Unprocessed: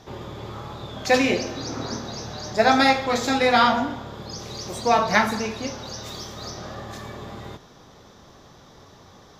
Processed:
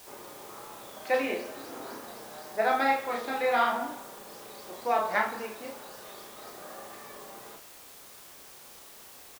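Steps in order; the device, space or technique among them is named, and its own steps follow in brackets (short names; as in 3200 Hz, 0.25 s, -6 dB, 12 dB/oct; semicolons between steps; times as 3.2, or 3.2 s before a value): wax cylinder (BPF 380–2400 Hz; wow and flutter 28 cents; white noise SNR 17 dB); doubler 33 ms -4.5 dB; gain -8 dB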